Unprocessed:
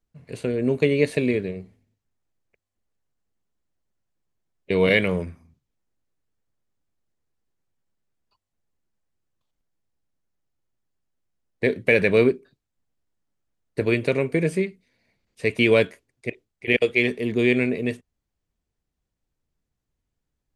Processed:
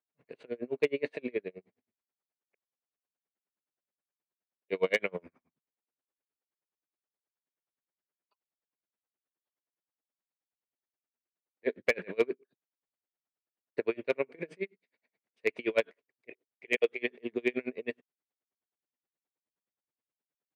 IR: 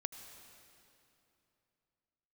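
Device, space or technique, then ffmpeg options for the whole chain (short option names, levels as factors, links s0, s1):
helicopter radio: -af "highpass=360,lowpass=2800,aeval=exprs='val(0)*pow(10,-34*(0.5-0.5*cos(2*PI*9.5*n/s))/20)':c=same,asoftclip=type=hard:threshold=0.211,volume=0.75"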